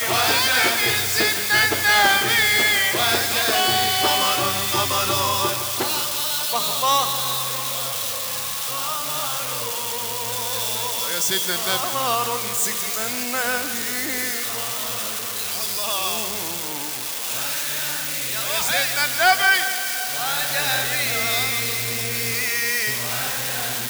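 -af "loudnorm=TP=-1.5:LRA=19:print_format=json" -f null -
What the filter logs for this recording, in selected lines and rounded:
"input_i" : "-20.1",
"input_tp" : "-7.7",
"input_lra" : "6.7",
"input_thresh" : "-30.1",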